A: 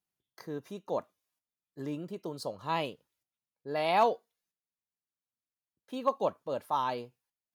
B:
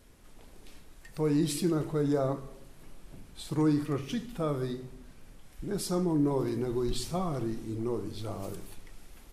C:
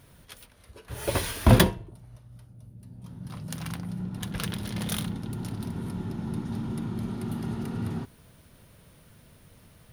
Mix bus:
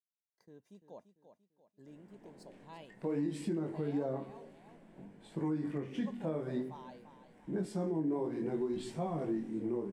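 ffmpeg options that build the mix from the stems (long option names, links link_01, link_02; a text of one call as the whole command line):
ffmpeg -i stem1.wav -i stem2.wav -filter_complex "[0:a]agate=range=-12dB:threshold=-51dB:ratio=16:detection=peak,volume=-18.5dB,asplit=2[link_01][link_02];[link_02]volume=-10.5dB[link_03];[1:a]acrossover=split=150 2200:gain=0.0631 1 0.0708[link_04][link_05][link_06];[link_04][link_05][link_06]amix=inputs=3:normalize=0,flanger=delay=18.5:depth=6.9:speed=0.56,adynamicequalizer=threshold=0.00224:dfrequency=1800:dqfactor=0.7:tfrequency=1800:tqfactor=0.7:attack=5:release=100:ratio=0.375:range=3.5:mode=boostabove:tftype=highshelf,adelay=1850,volume=3dB[link_07];[link_03]aecho=0:1:342|684|1026|1368|1710|2052:1|0.4|0.16|0.064|0.0256|0.0102[link_08];[link_01][link_07][link_08]amix=inputs=3:normalize=0,equalizer=frequency=200:width_type=o:width=0.33:gain=7,equalizer=frequency=1250:width_type=o:width=0.33:gain=-12,equalizer=frequency=2500:width_type=o:width=0.33:gain=-3,equalizer=frequency=4000:width_type=o:width=0.33:gain=-3,equalizer=frequency=8000:width_type=o:width=0.33:gain=7,equalizer=frequency=12500:width_type=o:width=0.33:gain=-8,alimiter=level_in=2.5dB:limit=-24dB:level=0:latency=1:release=281,volume=-2.5dB" out.wav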